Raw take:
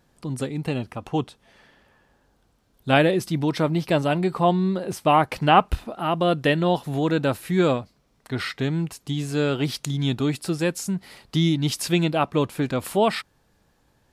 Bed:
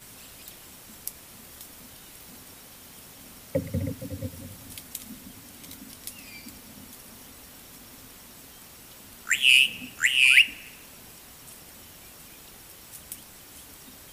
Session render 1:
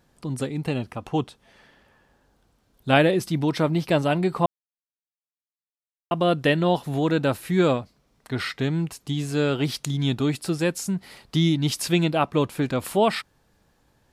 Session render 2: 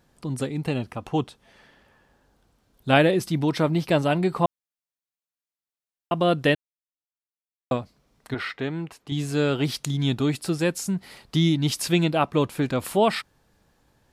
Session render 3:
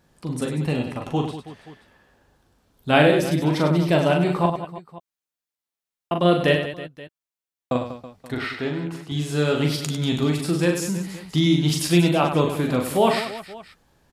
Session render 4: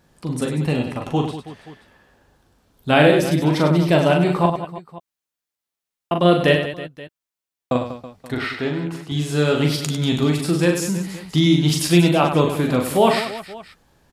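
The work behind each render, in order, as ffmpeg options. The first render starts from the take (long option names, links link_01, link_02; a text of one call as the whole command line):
ffmpeg -i in.wav -filter_complex "[0:a]asplit=3[link_01][link_02][link_03];[link_01]atrim=end=4.46,asetpts=PTS-STARTPTS,afade=type=out:start_time=4.456:duration=0.004:curve=hsin[link_04];[link_02]atrim=start=4.46:end=6.11,asetpts=PTS-STARTPTS,volume=0[link_05];[link_03]atrim=start=6.11,asetpts=PTS-STARTPTS,afade=type=in:duration=0.004:curve=hsin[link_06];[link_04][link_05][link_06]concat=n=3:v=0:a=1" out.wav
ffmpeg -i in.wav -filter_complex "[0:a]asettb=1/sr,asplit=3[link_01][link_02][link_03];[link_01]atrim=end=8.344[link_04];[link_02]atrim=start=8.34:end=9.12,asetpts=PTS-STARTPTS,afade=type=in:duration=0.004:curve=qsin,afade=type=out:start_time=0.776:duration=0.004:curve=qsin,bass=frequency=250:gain=-9,treble=frequency=4000:gain=-12[link_05];[link_03]atrim=start=9.116[link_06];[link_04][link_05]acrossfade=duration=0.004:curve1=hsin:curve2=qsin[link_07];[link_07][link_06]acrossfade=duration=0.004:curve1=qsin:curve2=hsin,asplit=3[link_08][link_09][link_10];[link_08]atrim=end=6.55,asetpts=PTS-STARTPTS,afade=type=out:start_time=6.546:duration=0.004:curve=hsin[link_11];[link_09]atrim=start=6.55:end=7.71,asetpts=PTS-STARTPTS,volume=0[link_12];[link_10]atrim=start=7.71,asetpts=PTS-STARTPTS,afade=type=in:duration=0.004:curve=hsin[link_13];[link_11][link_12][link_13]concat=n=3:v=0:a=1" out.wav
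ffmpeg -i in.wav -filter_complex "[0:a]asplit=2[link_01][link_02];[link_02]adelay=12,volume=-11dB[link_03];[link_01][link_03]amix=inputs=2:normalize=0,aecho=1:1:40|100|190|325|527.5:0.631|0.398|0.251|0.158|0.1" out.wav
ffmpeg -i in.wav -af "volume=3dB,alimiter=limit=-1dB:level=0:latency=1" out.wav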